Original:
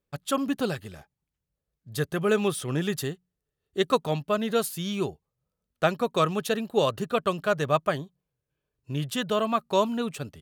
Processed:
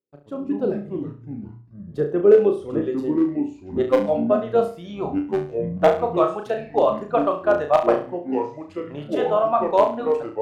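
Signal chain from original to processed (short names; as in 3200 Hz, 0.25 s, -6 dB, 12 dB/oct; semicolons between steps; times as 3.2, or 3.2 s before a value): band-pass sweep 360 Hz -> 730 Hz, 1.71–5.36; reverb removal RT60 1.3 s; AGC gain up to 12.5 dB; AM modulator 99 Hz, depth 20%; wavefolder -7 dBFS; 2.81–4.01 robotiser 129 Hz; echoes that change speed 88 ms, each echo -5 st, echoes 3, each echo -6 dB; notches 60/120 Hz; on a send: flutter echo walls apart 5.9 m, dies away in 0.38 s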